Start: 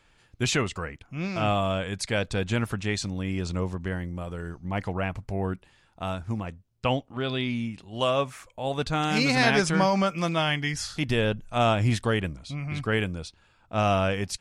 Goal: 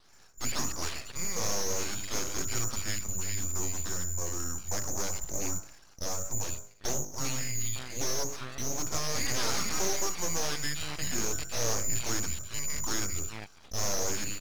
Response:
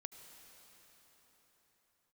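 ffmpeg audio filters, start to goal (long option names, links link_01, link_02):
-filter_complex "[0:a]bandreject=frequency=50.18:width_type=h:width=4,bandreject=frequency=100.36:width_type=h:width=4,bandreject=frequency=150.54:width_type=h:width=4,bandreject=frequency=200.72:width_type=h:width=4,bandreject=frequency=250.9:width_type=h:width=4,bandreject=frequency=301.08:width_type=h:width=4,bandreject=frequency=351.26:width_type=h:width=4,bandreject=frequency=401.44:width_type=h:width=4,bandreject=frequency=451.62:width_type=h:width=4,bandreject=frequency=501.8:width_type=h:width=4,bandreject=frequency=551.98:width_type=h:width=4,bandreject=frequency=602.16:width_type=h:width=4,bandreject=frequency=652.34:width_type=h:width=4,bandreject=frequency=702.52:width_type=h:width=4,bandreject=frequency=752.7:width_type=h:width=4,bandreject=frequency=802.88:width_type=h:width=4,bandreject=frequency=853.06:width_type=h:width=4,bandreject=frequency=903.24:width_type=h:width=4,bandreject=frequency=953.42:width_type=h:width=4,bandreject=frequency=1003.6:width_type=h:width=4,bandreject=frequency=1053.78:width_type=h:width=4,bandreject=frequency=1103.96:width_type=h:width=4,bandreject=frequency=1154.14:width_type=h:width=4,bandreject=frequency=1204.32:width_type=h:width=4,bandreject=frequency=1254.5:width_type=h:width=4,bandreject=frequency=1304.68:width_type=h:width=4,bandreject=frequency=1354.86:width_type=h:width=4,bandreject=frequency=1405.04:width_type=h:width=4,bandreject=frequency=1455.22:width_type=h:width=4,bandreject=frequency=1505.4:width_type=h:width=4,bandreject=frequency=1555.58:width_type=h:width=4,bandreject=frequency=1605.76:width_type=h:width=4,bandreject=frequency=1655.94:width_type=h:width=4,bandreject=frequency=1706.12:width_type=h:width=4,asplit=2[link_01][link_02];[link_02]acompressor=threshold=-33dB:ratio=6,volume=2dB[link_03];[link_01][link_03]amix=inputs=2:normalize=0,acrossover=split=360|2700[link_04][link_05][link_06];[link_04]adelay=30[link_07];[link_06]adelay=400[link_08];[link_07][link_05][link_08]amix=inputs=3:normalize=0,afreqshift=-41,aresample=16000,asoftclip=type=tanh:threshold=-23.5dB,aresample=44100,lowpass=frequency=3100:width_type=q:width=0.5098,lowpass=frequency=3100:width_type=q:width=0.6013,lowpass=frequency=3100:width_type=q:width=0.9,lowpass=frequency=3100:width_type=q:width=2.563,afreqshift=-3600,aeval=exprs='abs(val(0))':channel_layout=same"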